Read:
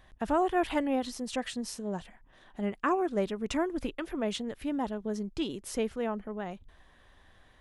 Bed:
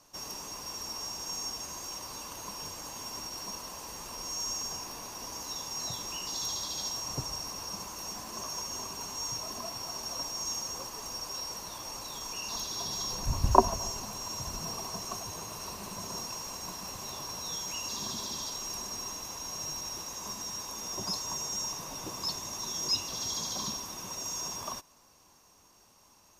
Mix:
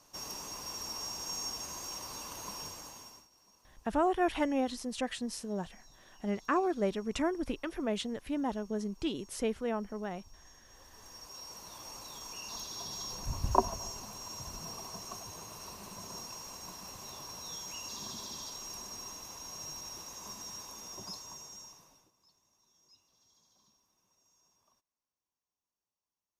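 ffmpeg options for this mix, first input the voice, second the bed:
ffmpeg -i stem1.wav -i stem2.wav -filter_complex "[0:a]adelay=3650,volume=-1.5dB[link_01];[1:a]volume=18dB,afade=type=out:start_time=2.56:duration=0.71:silence=0.0630957,afade=type=in:start_time=10.65:duration=1.2:silence=0.105925,afade=type=out:start_time=20.54:duration=1.57:silence=0.0354813[link_02];[link_01][link_02]amix=inputs=2:normalize=0" out.wav

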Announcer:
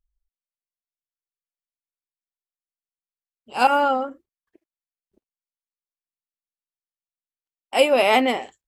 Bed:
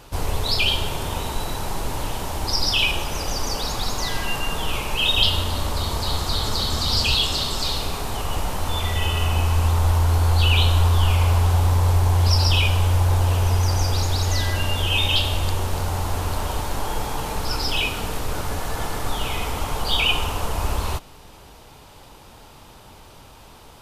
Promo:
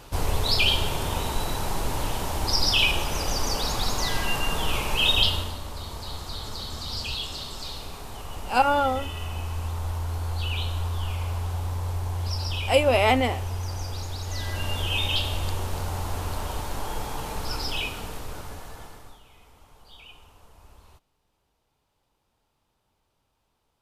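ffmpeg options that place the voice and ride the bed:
ffmpeg -i stem1.wav -i stem2.wav -filter_complex "[0:a]adelay=4950,volume=-3dB[link_01];[1:a]volume=5dB,afade=type=out:start_time=5.09:duration=0.5:silence=0.298538,afade=type=in:start_time=14.25:duration=0.47:silence=0.501187,afade=type=out:start_time=17.58:duration=1.64:silence=0.0707946[link_02];[link_01][link_02]amix=inputs=2:normalize=0" out.wav

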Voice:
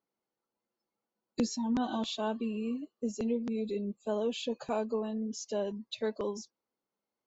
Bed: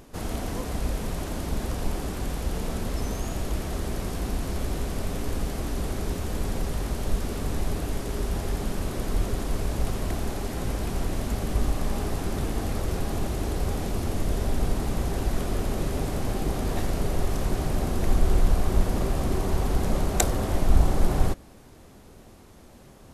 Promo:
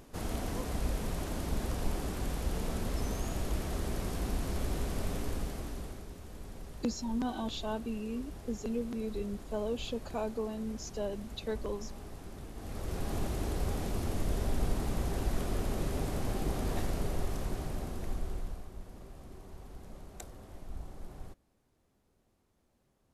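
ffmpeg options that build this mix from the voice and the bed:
ffmpeg -i stem1.wav -i stem2.wav -filter_complex "[0:a]adelay=5450,volume=-3dB[link_01];[1:a]volume=6.5dB,afade=type=out:start_time=5.11:duration=0.96:silence=0.237137,afade=type=in:start_time=12.55:duration=0.6:silence=0.266073,afade=type=out:start_time=16.73:duration=1.98:silence=0.125893[link_02];[link_01][link_02]amix=inputs=2:normalize=0" out.wav

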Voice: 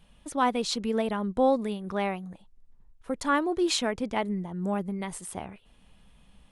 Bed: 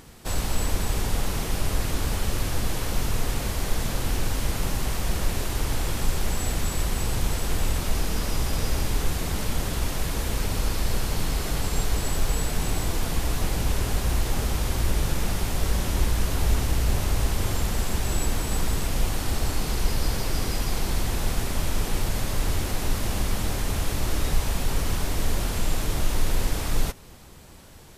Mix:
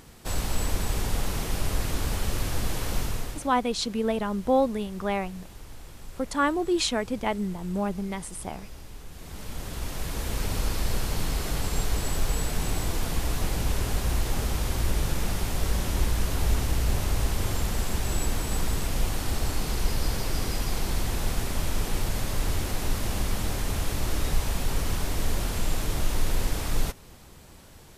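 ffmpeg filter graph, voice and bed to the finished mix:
ffmpeg -i stem1.wav -i stem2.wav -filter_complex "[0:a]adelay=3100,volume=1dB[link_01];[1:a]volume=14.5dB,afade=type=out:start_time=2.96:duration=0.54:silence=0.149624,afade=type=in:start_time=9.1:duration=1.41:silence=0.149624[link_02];[link_01][link_02]amix=inputs=2:normalize=0" out.wav

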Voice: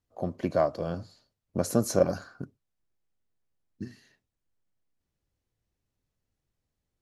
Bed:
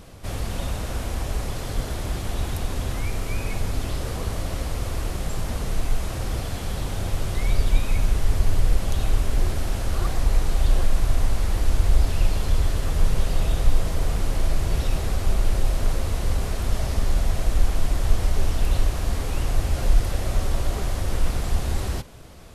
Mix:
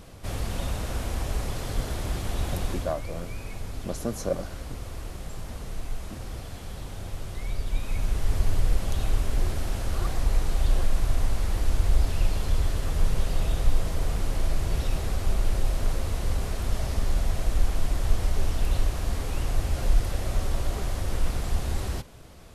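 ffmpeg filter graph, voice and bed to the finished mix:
ffmpeg -i stem1.wav -i stem2.wav -filter_complex "[0:a]adelay=2300,volume=-5.5dB[link_01];[1:a]volume=4dB,afade=type=out:start_time=2.69:duration=0.25:silence=0.421697,afade=type=in:start_time=7.65:duration=0.72:silence=0.501187[link_02];[link_01][link_02]amix=inputs=2:normalize=0" out.wav

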